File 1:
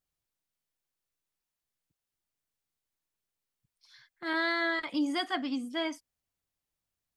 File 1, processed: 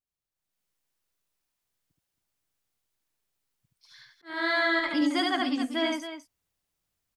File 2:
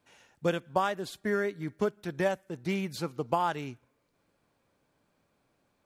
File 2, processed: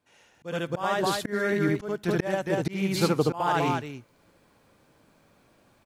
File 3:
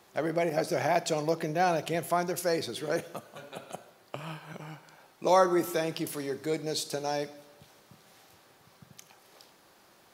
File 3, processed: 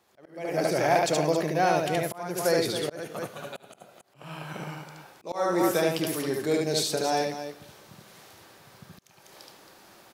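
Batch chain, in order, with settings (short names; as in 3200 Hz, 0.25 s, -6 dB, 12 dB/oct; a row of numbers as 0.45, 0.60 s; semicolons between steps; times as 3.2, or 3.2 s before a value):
loudspeakers at several distances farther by 25 m -2 dB, 93 m -10 dB; auto swell 0.354 s; AGC gain up to 12.5 dB; match loudness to -27 LUFS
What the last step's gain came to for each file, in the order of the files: -9.0, -3.0, -8.0 dB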